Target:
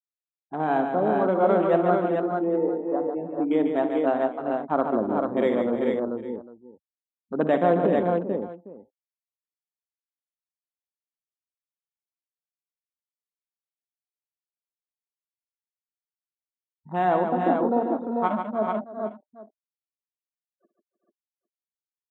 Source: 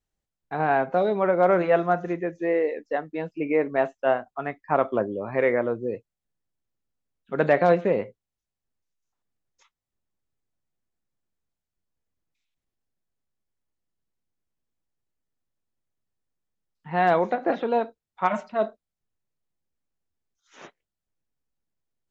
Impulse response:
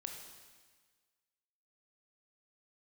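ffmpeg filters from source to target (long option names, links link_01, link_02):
-af "afftfilt=real='re*gte(hypot(re,im),0.0224)':imag='im*gte(hypot(re,im),0.0224)':win_size=1024:overlap=0.75,afwtdn=0.0282,equalizer=frequency=125:width_type=o:width=1:gain=-10,equalizer=frequency=250:width_type=o:width=1:gain=8,equalizer=frequency=500:width_type=o:width=1:gain=-4,equalizer=frequency=2000:width_type=o:width=1:gain=-9,aecho=1:1:59|143|307|389|440|805:0.211|0.473|0.158|0.282|0.631|0.112"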